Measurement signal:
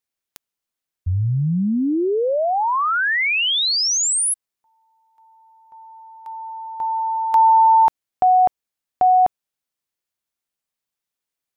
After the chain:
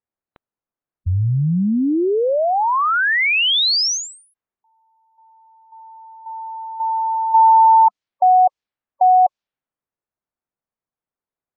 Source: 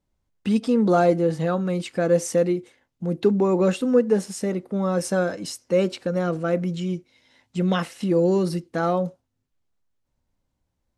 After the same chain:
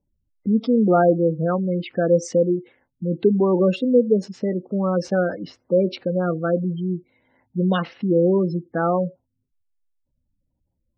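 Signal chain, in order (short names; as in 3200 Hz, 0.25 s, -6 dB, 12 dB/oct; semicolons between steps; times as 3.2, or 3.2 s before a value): Chebyshev low-pass 5000 Hz, order 2; low-pass opened by the level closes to 1200 Hz, open at -16.5 dBFS; spectral gate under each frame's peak -20 dB strong; gain +3 dB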